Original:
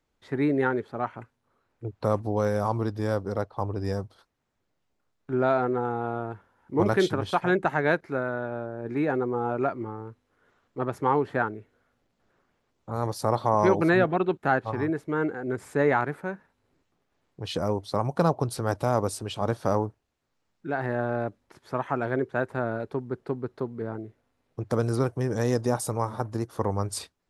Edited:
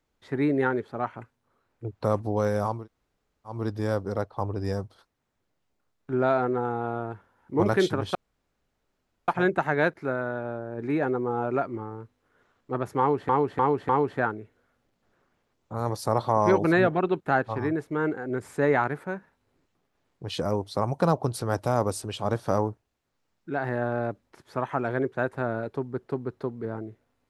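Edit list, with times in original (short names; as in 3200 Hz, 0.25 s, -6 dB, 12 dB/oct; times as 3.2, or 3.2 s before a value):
2.76 insert room tone 0.80 s, crossfade 0.24 s
7.35 insert room tone 1.13 s
11.06–11.36 loop, 4 plays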